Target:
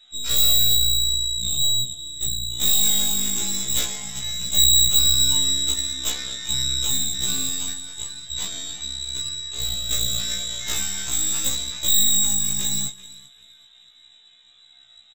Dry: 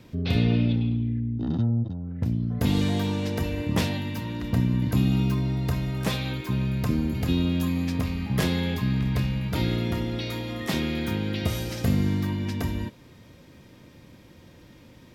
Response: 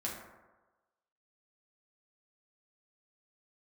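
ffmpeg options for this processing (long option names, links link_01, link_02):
-filter_complex "[0:a]flanger=delay=17:depth=3.6:speed=0.2,lowpass=frequency=3400:width_type=q:width=0.5098,lowpass=frequency=3400:width_type=q:width=0.6013,lowpass=frequency=3400:width_type=q:width=0.9,lowpass=frequency=3400:width_type=q:width=2.563,afreqshift=-4000,asettb=1/sr,asplit=3[link_01][link_02][link_03];[link_01]atrim=end=7.734[link_04];[link_02]atrim=start=7.73:end=9.91,asetpts=PTS-STARTPTS,afade=type=in:duration=0.004:curve=qsin,afade=type=out:start_time=2.176:duration=0.004:curve=qsin,equalizer=frequency=2200:width_type=o:width=2.6:gain=-8[link_05];[link_03]atrim=start=9.906[link_06];[link_04][link_05]acrossfade=duration=0.004:curve1=hsin:curve2=qsin[link_07];[link_07][link_06]acrossfade=duration=0.004:curve1=qsin:curve2=hsin,bandreject=frequency=170:width_type=h:width=4,bandreject=frequency=340:width_type=h:width=4,bandreject=frequency=510:width_type=h:width=4,bandreject=frequency=680:width_type=h:width=4,bandreject=frequency=850:width_type=h:width=4,bandreject=frequency=1020:width_type=h:width=4,bandreject=frequency=1190:width_type=h:width=4,bandreject=frequency=1360:width_type=h:width=4,bandreject=frequency=1530:width_type=h:width=4,bandreject=frequency=1700:width_type=h:width=4,bandreject=frequency=1870:width_type=h:width=4,bandreject=frequency=2040:width_type=h:width=4,bandreject=frequency=2210:width_type=h:width=4,bandreject=frequency=2380:width_type=h:width=4,bandreject=frequency=2550:width_type=h:width=4,bandreject=frequency=2720:width_type=h:width=4,bandreject=frequency=2890:width_type=h:width=4,bandreject=frequency=3060:width_type=h:width=4,bandreject=frequency=3230:width_type=h:width=4,bandreject=frequency=3400:width_type=h:width=4,bandreject=frequency=3570:width_type=h:width=4,bandreject=frequency=3740:width_type=h:width=4,bandreject=frequency=3910:width_type=h:width=4,bandreject=frequency=4080:width_type=h:width=4,bandreject=frequency=4250:width_type=h:width=4,bandreject=frequency=4420:width_type=h:width=4,bandreject=frequency=4590:width_type=h:width=4,bandreject=frequency=4760:width_type=h:width=4,asoftclip=type=tanh:threshold=-18dB,aecho=1:1:388|776|1164:0.211|0.074|0.0259,aeval=exprs='0.133*(cos(1*acos(clip(val(0)/0.133,-1,1)))-cos(1*PI/2))+0.0668*(cos(4*acos(clip(val(0)/0.133,-1,1)))-cos(4*PI/2))+0.00188*(cos(7*acos(clip(val(0)/0.133,-1,1)))-cos(7*PI/2))+0.00168*(cos(8*acos(clip(val(0)/0.133,-1,1)))-cos(8*PI/2))':channel_layout=same,aemphasis=mode=production:type=50kf,afftfilt=real='re*1.73*eq(mod(b,3),0)':imag='im*1.73*eq(mod(b,3),0)':win_size=2048:overlap=0.75"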